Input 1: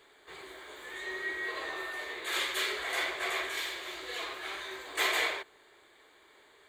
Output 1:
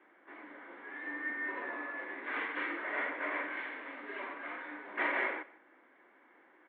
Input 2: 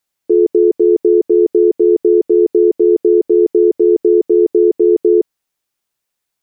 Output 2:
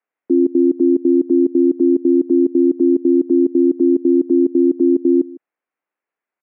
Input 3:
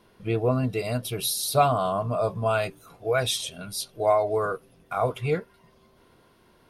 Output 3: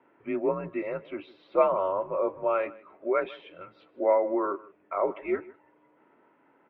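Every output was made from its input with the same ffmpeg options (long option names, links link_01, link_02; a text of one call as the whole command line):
ffmpeg -i in.wav -af "aecho=1:1:155:0.0944,highpass=frequency=340:width_type=q:width=0.5412,highpass=frequency=340:width_type=q:width=1.307,lowpass=frequency=2400:width_type=q:width=0.5176,lowpass=frequency=2400:width_type=q:width=0.7071,lowpass=frequency=2400:width_type=q:width=1.932,afreqshift=-84,volume=-1.5dB" out.wav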